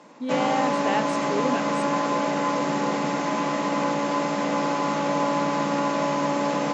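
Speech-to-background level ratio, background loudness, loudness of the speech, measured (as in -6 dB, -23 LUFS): -4.5 dB, -24.5 LUFS, -29.0 LUFS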